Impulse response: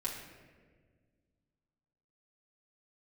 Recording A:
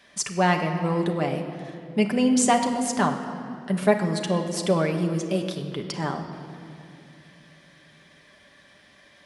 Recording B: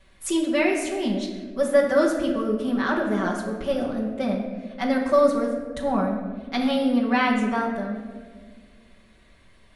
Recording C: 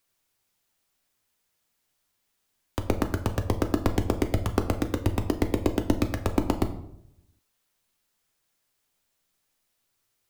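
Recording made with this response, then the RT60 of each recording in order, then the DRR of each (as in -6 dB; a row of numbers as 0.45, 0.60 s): B; 2.6, 1.6, 0.75 s; 2.0, -5.5, 6.5 dB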